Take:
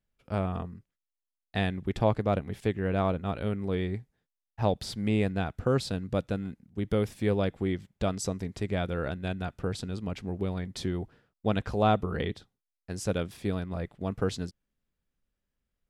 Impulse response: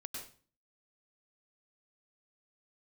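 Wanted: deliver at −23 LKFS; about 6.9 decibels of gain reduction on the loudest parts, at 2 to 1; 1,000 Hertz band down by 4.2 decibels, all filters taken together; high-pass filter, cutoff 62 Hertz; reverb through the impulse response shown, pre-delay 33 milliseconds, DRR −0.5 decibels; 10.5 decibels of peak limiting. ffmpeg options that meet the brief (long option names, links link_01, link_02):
-filter_complex "[0:a]highpass=62,equalizer=frequency=1000:width_type=o:gain=-6.5,acompressor=threshold=-34dB:ratio=2,alimiter=level_in=7.5dB:limit=-24dB:level=0:latency=1,volume=-7.5dB,asplit=2[link_01][link_02];[1:a]atrim=start_sample=2205,adelay=33[link_03];[link_02][link_03]afir=irnorm=-1:irlink=0,volume=2.5dB[link_04];[link_01][link_04]amix=inputs=2:normalize=0,volume=15.5dB"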